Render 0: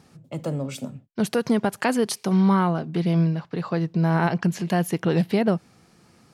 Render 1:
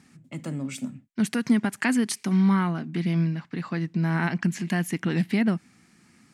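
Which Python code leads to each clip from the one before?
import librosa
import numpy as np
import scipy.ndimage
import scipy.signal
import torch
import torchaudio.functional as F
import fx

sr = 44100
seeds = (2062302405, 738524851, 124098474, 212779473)

y = fx.graphic_eq(x, sr, hz=(250, 500, 2000, 8000), db=(11, -8, 11, 9))
y = F.gain(torch.from_numpy(y), -7.5).numpy()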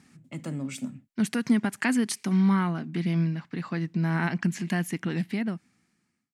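y = fx.fade_out_tail(x, sr, length_s=1.61)
y = F.gain(torch.from_numpy(y), -1.5).numpy()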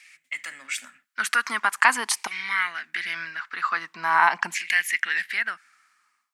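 y = fx.filter_lfo_highpass(x, sr, shape='saw_down', hz=0.44, low_hz=870.0, high_hz=2300.0, q=4.3)
y = F.gain(torch.from_numpy(y), 7.0).numpy()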